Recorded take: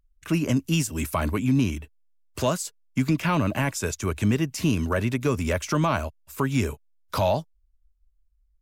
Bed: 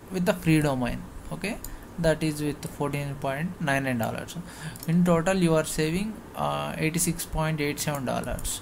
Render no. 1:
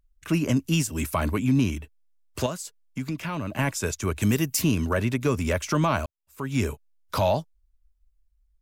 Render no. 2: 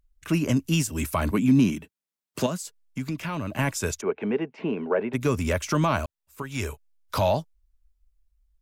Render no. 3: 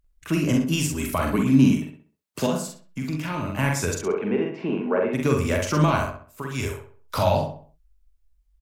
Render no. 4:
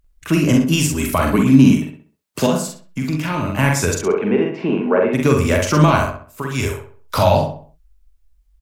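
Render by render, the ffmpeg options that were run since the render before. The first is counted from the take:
ffmpeg -i in.wav -filter_complex "[0:a]asettb=1/sr,asplit=3[link_01][link_02][link_03];[link_01]atrim=end=2.464[link_04];[link_02]atrim=start=2.46:end=3.59,asetpts=PTS-STARTPTS,afade=type=in:duration=0.004:curve=qsin,afade=type=out:start_time=1.126:duration=0.004:curve=qsin,acompressor=threshold=-40dB:ratio=1.5:attack=3.2:release=140:knee=1:detection=peak[link_05];[link_03]atrim=start=3.586[link_06];[link_04][link_05]acrossfade=duration=0.004:curve1=hsin:curve2=qsin[link_07];[link_07][link_06]acrossfade=duration=0.004:curve1=qsin:curve2=hsin,asplit=3[link_08][link_09][link_10];[link_08]afade=type=out:start_time=4.21:duration=0.02[link_11];[link_09]aemphasis=mode=production:type=50fm,afade=type=in:start_time=4.21:duration=0.02,afade=type=out:start_time=4.61:duration=0.02[link_12];[link_10]afade=type=in:start_time=4.61:duration=0.02[link_13];[link_11][link_12][link_13]amix=inputs=3:normalize=0,asplit=2[link_14][link_15];[link_14]atrim=end=6.06,asetpts=PTS-STARTPTS,afade=type=out:start_time=6.056:duration=0.004:curve=hsin[link_16];[link_15]atrim=start=6.06,asetpts=PTS-STARTPTS,afade=type=in:duration=0.56:curve=qua[link_17];[link_16][link_17]concat=n=2:v=0:a=1" out.wav
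ffmpeg -i in.wav -filter_complex "[0:a]asettb=1/sr,asplit=3[link_01][link_02][link_03];[link_01]atrim=end=1.314[link_04];[link_02]atrim=start=1.31:end=2.63,asetpts=PTS-STARTPTS,afade=type=in:duration=0.004:curve=qsin,afade=type=out:start_time=1.316:duration=0.004:curve=qsin,highpass=frequency=180:width_type=q:width=2[link_05];[link_03]atrim=start=2.626[link_06];[link_04][link_05]acrossfade=duration=0.004:curve1=hsin:curve2=qsin[link_07];[link_07][link_06]acrossfade=duration=0.004:curve1=qsin:curve2=hsin,asplit=3[link_08][link_09][link_10];[link_08]afade=type=out:start_time=4:duration=0.02[link_11];[link_09]highpass=frequency=220:width=0.5412,highpass=frequency=220:width=1.3066,equalizer=frequency=290:width_type=q:width=4:gain=-7,equalizer=frequency=440:width_type=q:width=4:gain=9,equalizer=frequency=800:width_type=q:width=4:gain=6,equalizer=frequency=1200:width_type=q:width=4:gain=-5,equalizer=frequency=1800:width_type=q:width=4:gain=-5,lowpass=frequency=2200:width=0.5412,lowpass=frequency=2200:width=1.3066,afade=type=in:start_time=4:duration=0.02,afade=type=out:start_time=5.13:duration=0.02[link_12];[link_10]afade=type=in:start_time=5.13:duration=0.02[link_13];[link_11][link_12][link_13]amix=inputs=3:normalize=0,asettb=1/sr,asplit=3[link_14][link_15][link_16];[link_14]atrim=end=6.424[link_17];[link_15]atrim=start=6.42:end=7.16,asetpts=PTS-STARTPTS,afade=type=in:duration=0.004:curve=qsin,afade=type=out:start_time=0.736:duration=0.004:curve=qsin,equalizer=frequency=200:width_type=o:width=1.7:gain=-10[link_18];[link_16]atrim=start=7.156[link_19];[link_17][link_18]acrossfade=duration=0.004:curve1=hsin:curve2=qsin[link_20];[link_20][link_19]acrossfade=duration=0.004:curve1=qsin:curve2=hsin" out.wav
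ffmpeg -i in.wav -filter_complex "[0:a]asplit=2[link_01][link_02];[link_02]adelay=45,volume=-3.5dB[link_03];[link_01][link_03]amix=inputs=2:normalize=0,asplit=2[link_04][link_05];[link_05]adelay=65,lowpass=frequency=2600:poles=1,volume=-5.5dB,asplit=2[link_06][link_07];[link_07]adelay=65,lowpass=frequency=2600:poles=1,volume=0.4,asplit=2[link_08][link_09];[link_09]adelay=65,lowpass=frequency=2600:poles=1,volume=0.4,asplit=2[link_10][link_11];[link_11]adelay=65,lowpass=frequency=2600:poles=1,volume=0.4,asplit=2[link_12][link_13];[link_13]adelay=65,lowpass=frequency=2600:poles=1,volume=0.4[link_14];[link_04][link_06][link_08][link_10][link_12][link_14]amix=inputs=6:normalize=0" out.wav
ffmpeg -i in.wav -af "volume=7dB,alimiter=limit=-1dB:level=0:latency=1" out.wav

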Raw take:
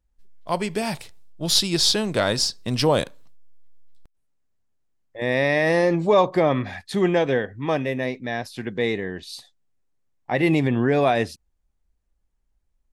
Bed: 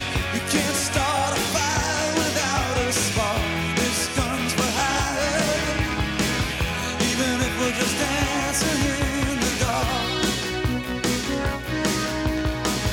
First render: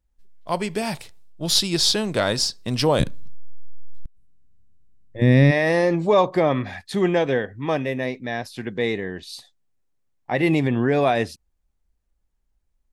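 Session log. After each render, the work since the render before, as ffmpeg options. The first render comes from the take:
ffmpeg -i in.wav -filter_complex "[0:a]asplit=3[link_01][link_02][link_03];[link_01]afade=type=out:start_time=2.99:duration=0.02[link_04];[link_02]asubboost=boost=10.5:cutoff=230,afade=type=in:start_time=2.99:duration=0.02,afade=type=out:start_time=5.5:duration=0.02[link_05];[link_03]afade=type=in:start_time=5.5:duration=0.02[link_06];[link_04][link_05][link_06]amix=inputs=3:normalize=0" out.wav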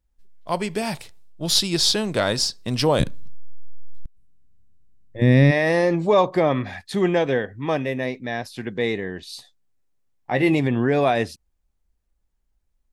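ffmpeg -i in.wav -filter_complex "[0:a]asettb=1/sr,asplit=3[link_01][link_02][link_03];[link_01]atrim=end=9.344[link_04];[link_02]atrim=start=9.34:end=10.59,asetpts=PTS-STARTPTS,afade=type=in:duration=0.004:curve=qsin,afade=type=out:start_time=1.246:duration=0.004:curve=qsin,asplit=2[link_05][link_06];[link_06]adelay=15,volume=-9.5dB[link_07];[link_05][link_07]amix=inputs=2:normalize=0,atrim=end_sample=55125[link_08];[link_03]atrim=start=10.586[link_09];[link_04][link_08]acrossfade=duration=0.004:curve1=hsin:curve2=qsin[link_10];[link_10][link_09]acrossfade=duration=0.004:curve1=qsin:curve2=hsin" out.wav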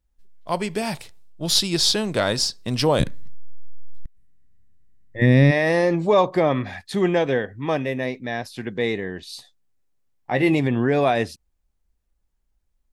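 ffmpeg -i in.wav -filter_complex "[0:a]asettb=1/sr,asplit=3[link_01][link_02][link_03];[link_01]atrim=end=3.064[link_04];[link_02]atrim=start=3.06:end=5.26,asetpts=PTS-STARTPTS,afade=type=in:duration=0.004:curve=qsin,afade=type=out:start_time=2.196:duration=0.004:curve=qsin,equalizer=frequency=1900:width_type=o:width=0.28:gain=12.5[link_05];[link_03]atrim=start=5.256[link_06];[link_04][link_05]acrossfade=duration=0.004:curve1=hsin:curve2=qsin[link_07];[link_07][link_06]acrossfade=duration=0.004:curve1=qsin:curve2=hsin" out.wav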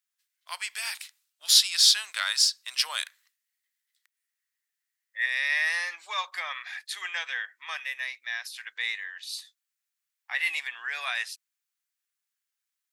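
ffmpeg -i in.wav -af "highpass=frequency=1400:width=0.5412,highpass=frequency=1400:width=1.3066,highshelf=frequency=8700:gain=4.5" out.wav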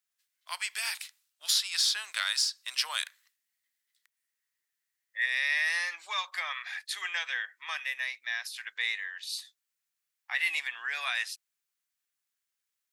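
ffmpeg -i in.wav -filter_complex "[0:a]acrossover=split=630|1900[link_01][link_02][link_03];[link_01]acompressor=threshold=-58dB:ratio=4[link_04];[link_02]acompressor=threshold=-34dB:ratio=4[link_05];[link_03]acompressor=threshold=-26dB:ratio=4[link_06];[link_04][link_05][link_06]amix=inputs=3:normalize=0" out.wav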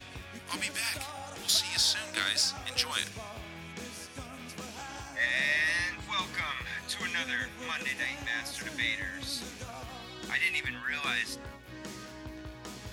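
ffmpeg -i in.wav -i bed.wav -filter_complex "[1:a]volume=-20dB[link_01];[0:a][link_01]amix=inputs=2:normalize=0" out.wav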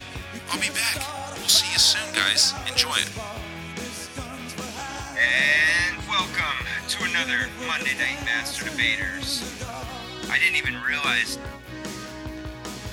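ffmpeg -i in.wav -af "volume=9dB" out.wav

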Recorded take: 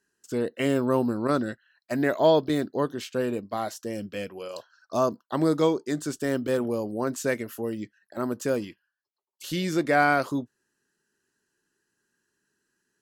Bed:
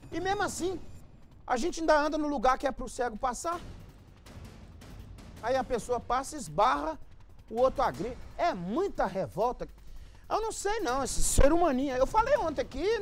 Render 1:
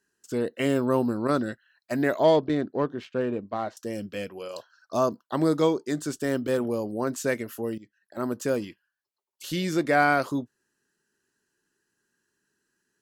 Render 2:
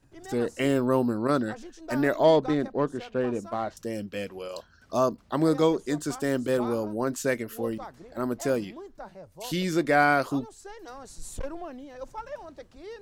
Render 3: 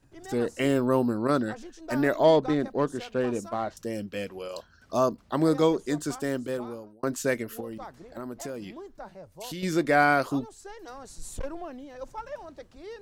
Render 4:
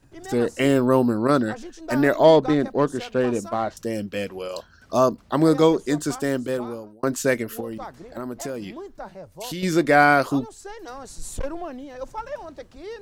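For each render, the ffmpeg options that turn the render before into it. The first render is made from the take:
ffmpeg -i in.wav -filter_complex "[0:a]asettb=1/sr,asplit=3[link_01][link_02][link_03];[link_01]atrim=end=2.234[link_04];[link_02]atrim=start=2.23:end=3.77,asetpts=PTS-STARTPTS,afade=type=in:duration=0.004:curve=qsin,afade=type=out:start_time=1.536:duration=0.004:curve=qsin,adynamicsmooth=sensitivity=2:basefreq=2200[link_05];[link_03]atrim=start=3.766[link_06];[link_04][link_05]acrossfade=duration=0.004:curve1=hsin:curve2=qsin[link_07];[link_07][link_06]acrossfade=duration=0.004:curve1=qsin:curve2=hsin,asplit=2[link_08][link_09];[link_08]atrim=end=7.78,asetpts=PTS-STARTPTS,afade=type=out:start_time=7.776:duration=0.004:curve=hsin:silence=0.11885[link_10];[link_09]atrim=start=7.78,asetpts=PTS-STARTPTS,afade=type=in:duration=0.48:silence=0.11885[link_11];[link_10][link_11]concat=n=2:v=0:a=1" out.wav
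ffmpeg -i in.wav -i bed.wav -filter_complex "[1:a]volume=-13dB[link_01];[0:a][link_01]amix=inputs=2:normalize=0" out.wav
ffmpeg -i in.wav -filter_complex "[0:a]asettb=1/sr,asplit=3[link_01][link_02][link_03];[link_01]atrim=end=2.674[link_04];[link_02]atrim=start=2.67:end=3.49,asetpts=PTS-STARTPTS,afade=type=in:duration=0.004:curve=qsin,afade=type=out:start_time=0.816:duration=0.004:curve=qsin,highshelf=frequency=4100:gain=9[link_05];[link_03]atrim=start=3.486[link_06];[link_04][link_05]acrossfade=duration=0.004:curve1=hsin:curve2=qsin[link_07];[link_07][link_06]acrossfade=duration=0.004:curve1=qsin:curve2=hsin,asettb=1/sr,asplit=3[link_08][link_09][link_10];[link_08]atrim=end=7.604[link_11];[link_09]atrim=start=7.6:end=9.63,asetpts=PTS-STARTPTS,afade=type=in:duration=0.004:curve=qsin,afade=type=out:start_time=2.026:duration=0.004:curve=qsin,acompressor=threshold=-34dB:ratio=4:attack=3.2:release=140:knee=1:detection=peak[link_12];[link_10]atrim=start=9.626[link_13];[link_11][link_12]acrossfade=duration=0.004:curve1=hsin:curve2=qsin[link_14];[link_14][link_13]acrossfade=duration=0.004:curve1=qsin:curve2=hsin,asplit=2[link_15][link_16];[link_15]atrim=end=7.03,asetpts=PTS-STARTPTS,afade=type=out:start_time=6.04:duration=0.99[link_17];[link_16]atrim=start=7.03,asetpts=PTS-STARTPTS,afade=type=in:duration=0.004:curve=hsin[link_18];[link_17][link_18]concat=n=2:v=0:a=1" out.wav
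ffmpeg -i in.wav -af "volume=5.5dB" out.wav

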